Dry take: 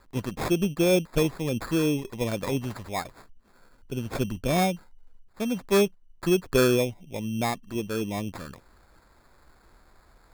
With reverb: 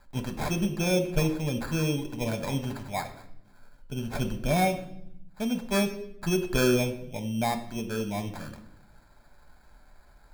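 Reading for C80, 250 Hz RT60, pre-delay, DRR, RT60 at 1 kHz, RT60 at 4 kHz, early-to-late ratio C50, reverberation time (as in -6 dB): 14.0 dB, 1.3 s, 5 ms, 5.5 dB, 0.65 s, 0.65 s, 11.5 dB, 0.75 s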